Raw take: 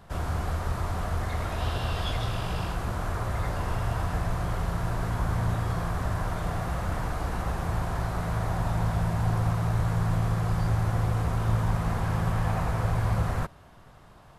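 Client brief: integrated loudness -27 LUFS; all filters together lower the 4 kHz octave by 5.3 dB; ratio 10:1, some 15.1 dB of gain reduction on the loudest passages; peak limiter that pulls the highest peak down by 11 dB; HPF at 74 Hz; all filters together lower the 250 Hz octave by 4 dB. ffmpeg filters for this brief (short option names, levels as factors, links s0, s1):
-af "highpass=74,equalizer=f=250:t=o:g=-7.5,equalizer=f=4000:t=o:g=-7,acompressor=threshold=0.01:ratio=10,volume=13.3,alimiter=limit=0.119:level=0:latency=1"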